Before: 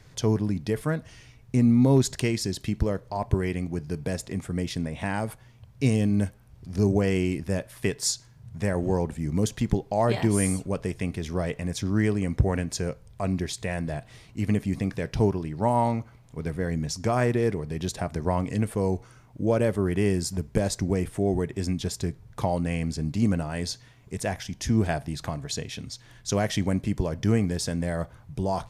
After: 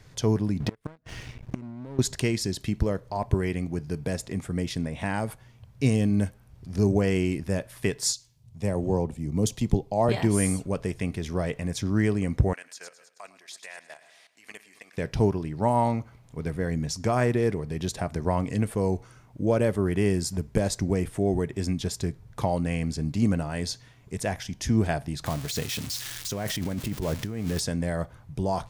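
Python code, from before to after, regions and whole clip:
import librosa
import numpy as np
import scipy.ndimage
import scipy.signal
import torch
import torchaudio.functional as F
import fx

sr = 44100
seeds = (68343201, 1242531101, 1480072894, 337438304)

y = fx.chain(x, sr, fx.lowpass(hz=3100.0, slope=6),
    fx.gate_flip(shuts_db=-18.0, range_db=-31),
    fx.leveller(passes=3), at=(0.6, 1.99))
y = fx.chain(y, sr, fx.peak_eq(hz=1600.0, db=-10.5, octaves=0.69),
    fx.band_widen(depth_pct=40), at=(8.13, 10.09))
y = fx.chain(y, sr, fx.highpass(hz=1100.0, slope=12),
    fx.echo_feedback(ms=105, feedback_pct=58, wet_db=-12.5),
    fx.level_steps(step_db=14), at=(12.53, 14.98))
y = fx.chain(y, sr, fx.crossing_spikes(level_db=-22.5),
    fx.over_compress(threshold_db=-28.0, ratio=-1.0),
    fx.high_shelf(hz=7300.0, db=-10.5), at=(25.26, 27.6))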